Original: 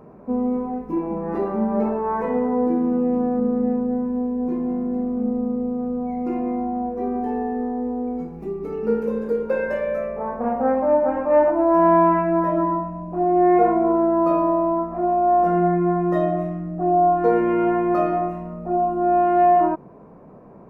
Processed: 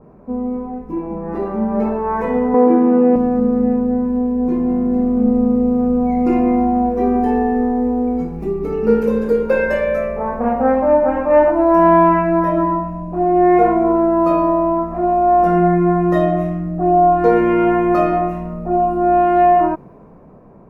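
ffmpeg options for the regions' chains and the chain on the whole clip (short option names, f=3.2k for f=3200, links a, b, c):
-filter_complex "[0:a]asettb=1/sr,asplit=3[a][b][c];[a]atrim=end=2.544[d];[b]atrim=start=2.54:end=3.16,asetpts=PTS-STARTPTS,afade=t=in:d=0.004:c=qsin,afade=t=out:st=0.616:d=0.004:c=qsin,acontrast=81,highpass=290,lowpass=2.3k[e];[c]atrim=start=3.156[f];[d][e]acrossfade=d=0.004:c1=hsin:c2=qsin[g];[g][f]acrossfade=d=0.004:c1=qsin:c2=hsin,lowshelf=f=88:g=10.5,dynaudnorm=f=390:g=9:m=11.5dB,adynamicequalizer=threshold=0.0398:dfrequency=1700:dqfactor=0.7:tfrequency=1700:tqfactor=0.7:attack=5:release=100:ratio=0.375:range=3:mode=boostabove:tftype=highshelf,volume=-1dB"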